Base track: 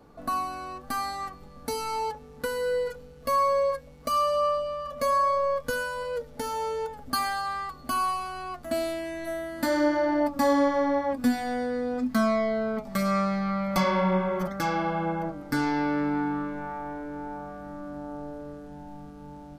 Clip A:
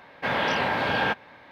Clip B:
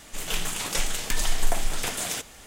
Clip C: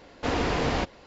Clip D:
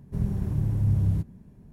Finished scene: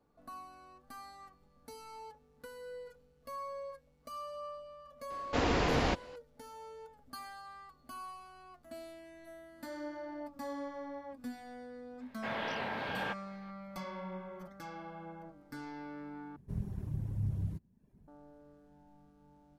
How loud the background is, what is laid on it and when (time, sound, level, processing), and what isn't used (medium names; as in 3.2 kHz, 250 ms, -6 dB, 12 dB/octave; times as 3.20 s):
base track -19 dB
5.10 s: add C -3.5 dB
12.00 s: add A -13 dB
16.36 s: replace with D -10 dB + reverb removal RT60 0.67 s
not used: B